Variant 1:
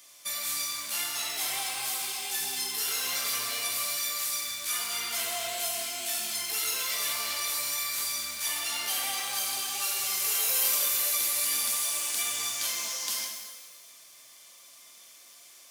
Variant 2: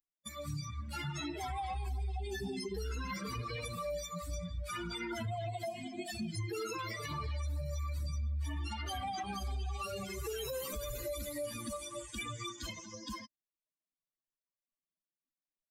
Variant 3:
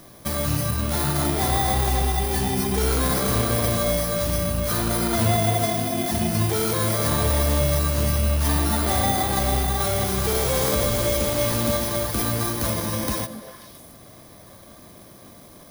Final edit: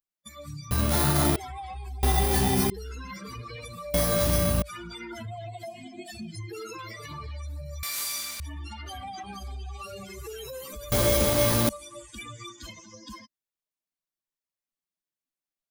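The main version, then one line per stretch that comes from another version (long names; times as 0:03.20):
2
0:00.71–0:01.36: punch in from 3
0:02.03–0:02.70: punch in from 3
0:03.94–0:04.62: punch in from 3
0:07.83–0:08.40: punch in from 1
0:10.92–0:11.69: punch in from 3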